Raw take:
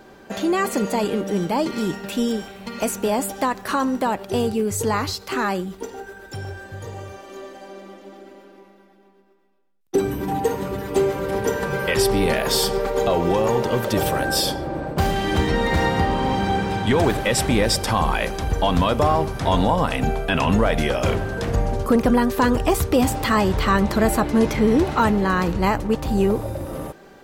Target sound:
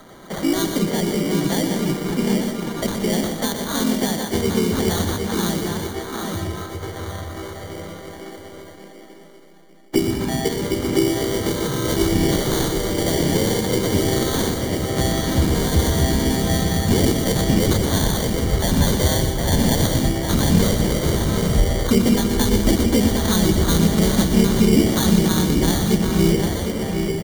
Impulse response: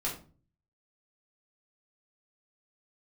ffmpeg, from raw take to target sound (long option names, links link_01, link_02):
-filter_complex "[0:a]bandreject=frequency=60:width_type=h:width=6,bandreject=frequency=120:width_type=h:width=6,bandreject=frequency=180:width_type=h:width=6,bandreject=frequency=240:width_type=h:width=6,bandreject=frequency=300:width_type=h:width=6,bandreject=frequency=360:width_type=h:width=6,bandreject=frequency=420:width_type=h:width=6,bandreject=frequency=480:width_type=h:width=6,asplit=2[link_01][link_02];[link_02]adelay=758,volume=-7dB,highshelf=frequency=4000:gain=-17.1[link_03];[link_01][link_03]amix=inputs=2:normalize=0,asplit=2[link_04][link_05];[link_05]asetrate=37084,aresample=44100,atempo=1.18921,volume=0dB[link_06];[link_04][link_06]amix=inputs=2:normalize=0,acrossover=split=160[link_07][link_08];[link_08]acrusher=samples=17:mix=1:aa=0.000001[link_09];[link_07][link_09]amix=inputs=2:normalize=0,acrossover=split=410|3000[link_10][link_11][link_12];[link_11]acompressor=threshold=-30dB:ratio=6[link_13];[link_10][link_13][link_12]amix=inputs=3:normalize=0,asplit=2[link_14][link_15];[link_15]aecho=0:1:121|193|887:0.398|0.224|0.316[link_16];[link_14][link_16]amix=inputs=2:normalize=0"